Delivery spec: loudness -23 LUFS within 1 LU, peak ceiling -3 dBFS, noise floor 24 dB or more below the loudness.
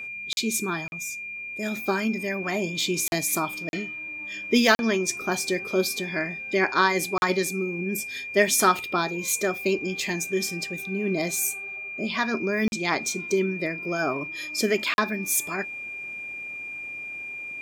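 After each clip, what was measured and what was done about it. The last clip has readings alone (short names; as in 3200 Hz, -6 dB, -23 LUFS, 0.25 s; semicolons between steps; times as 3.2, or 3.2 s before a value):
dropouts 8; longest dropout 41 ms; steady tone 2400 Hz; tone level -33 dBFS; loudness -26.0 LUFS; peak -4.0 dBFS; loudness target -23.0 LUFS
-> interpolate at 0.33/0.88/3.08/3.69/4.75/7.18/12.68/14.94, 41 ms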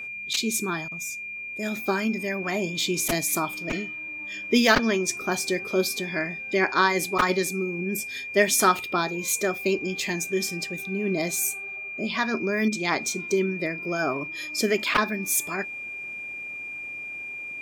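dropouts 0; steady tone 2400 Hz; tone level -33 dBFS
-> notch 2400 Hz, Q 30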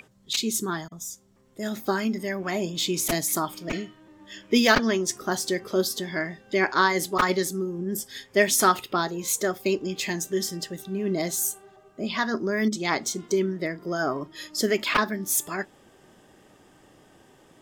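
steady tone none; loudness -26.0 LUFS; peak -4.5 dBFS; loudness target -23.0 LUFS
-> gain +3 dB; limiter -3 dBFS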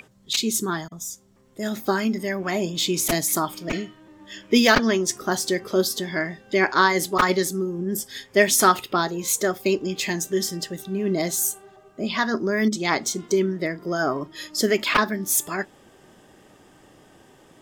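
loudness -23.0 LUFS; peak -3.0 dBFS; noise floor -54 dBFS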